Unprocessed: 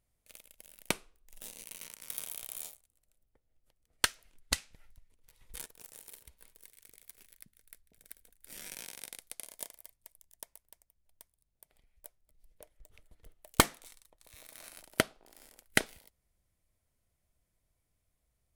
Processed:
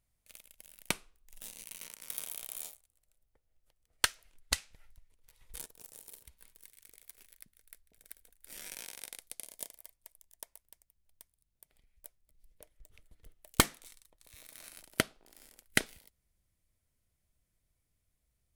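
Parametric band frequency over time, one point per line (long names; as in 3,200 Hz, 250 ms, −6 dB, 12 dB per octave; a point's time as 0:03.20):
parametric band −5 dB 1.7 octaves
440 Hz
from 0:01.81 67 Hz
from 0:02.72 230 Hz
from 0:05.56 1,900 Hz
from 0:06.24 500 Hz
from 0:06.87 160 Hz
from 0:09.26 1,200 Hz
from 0:09.78 130 Hz
from 0:10.61 730 Hz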